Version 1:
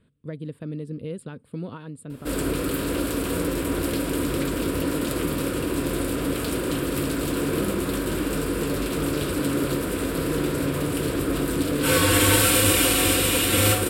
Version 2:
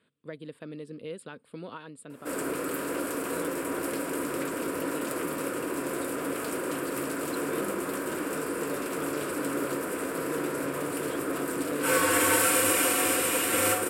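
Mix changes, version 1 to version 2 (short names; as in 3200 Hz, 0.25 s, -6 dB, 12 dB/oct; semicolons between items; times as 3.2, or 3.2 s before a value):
background: add bell 3700 Hz -14 dB 1.1 oct; master: add weighting filter A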